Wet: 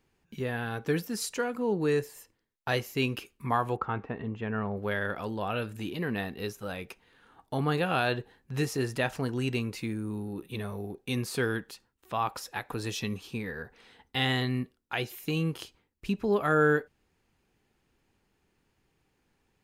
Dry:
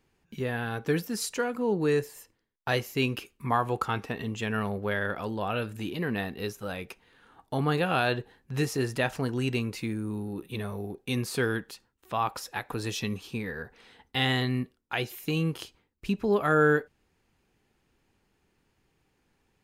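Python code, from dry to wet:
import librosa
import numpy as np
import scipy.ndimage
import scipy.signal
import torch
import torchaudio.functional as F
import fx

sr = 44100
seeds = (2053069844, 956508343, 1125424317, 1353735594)

y = fx.lowpass(x, sr, hz=1600.0, slope=12, at=(3.75, 4.76), fade=0.02)
y = y * 10.0 ** (-1.5 / 20.0)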